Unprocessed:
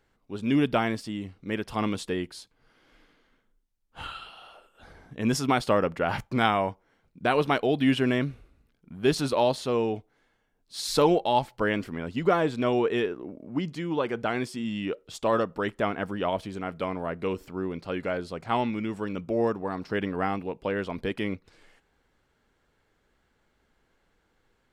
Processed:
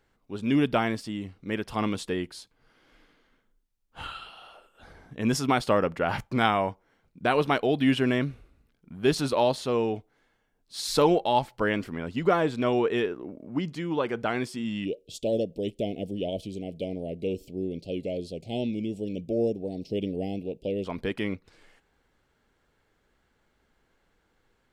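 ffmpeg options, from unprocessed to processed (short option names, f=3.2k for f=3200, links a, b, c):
-filter_complex "[0:a]asplit=3[a][b][c];[a]afade=t=out:st=14.84:d=0.02[d];[b]asuperstop=centerf=1300:order=8:qfactor=0.63,afade=t=in:st=14.84:d=0.02,afade=t=out:st=20.84:d=0.02[e];[c]afade=t=in:st=20.84:d=0.02[f];[d][e][f]amix=inputs=3:normalize=0"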